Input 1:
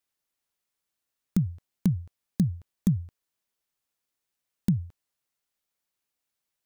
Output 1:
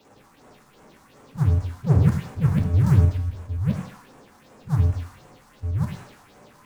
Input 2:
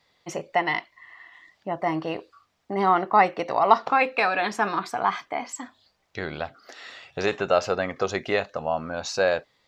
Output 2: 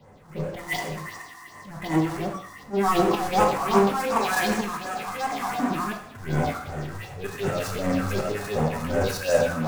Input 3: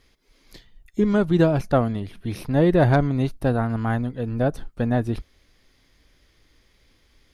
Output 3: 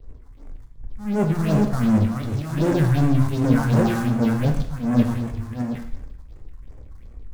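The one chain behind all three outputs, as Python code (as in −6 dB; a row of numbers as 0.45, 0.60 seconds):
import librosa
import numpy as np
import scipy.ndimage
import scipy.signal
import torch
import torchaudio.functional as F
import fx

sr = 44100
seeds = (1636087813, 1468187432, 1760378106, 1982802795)

y = fx.reverse_delay(x, sr, ms=658, wet_db=-6)
y = fx.notch(y, sr, hz=670.0, q=17.0)
y = fx.env_lowpass(y, sr, base_hz=790.0, full_db=-18.0)
y = fx.low_shelf(y, sr, hz=440.0, db=-4.5)
y = fx.hpss(y, sr, part='percussive', gain_db=-14)
y = fx.peak_eq(y, sr, hz=200.0, db=2.5, octaves=0.83)
y = fx.level_steps(y, sr, step_db=15)
y = fx.auto_swell(y, sr, attack_ms=221.0)
y = fx.power_curve(y, sr, exponent=0.35)
y = fx.phaser_stages(y, sr, stages=4, low_hz=420.0, high_hz=4400.0, hz=2.7, feedback_pct=25)
y = fx.rev_gated(y, sr, seeds[0], gate_ms=290, shape='falling', drr_db=3.0)
y = fx.band_widen(y, sr, depth_pct=70)
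y = librosa.util.normalize(y) * 10.0 ** (-6 / 20.0)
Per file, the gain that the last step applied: +17.5, +5.0, +4.0 decibels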